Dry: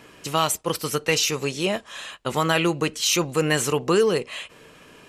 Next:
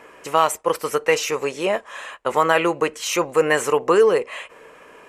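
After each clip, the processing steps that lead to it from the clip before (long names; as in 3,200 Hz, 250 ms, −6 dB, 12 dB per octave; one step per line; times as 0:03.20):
octave-band graphic EQ 125/500/1,000/2,000/4,000/8,000 Hz −6/+10/+9/+8/−5/+3 dB
level −5 dB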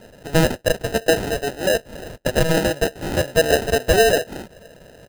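comb filter 1.6 ms, depth 44%
decimation without filtering 39×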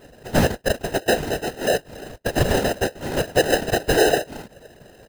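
random phases in short frames
level −2 dB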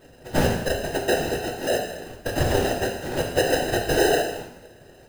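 reverb whose tail is shaped and stops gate 310 ms falling, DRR 0 dB
level −5 dB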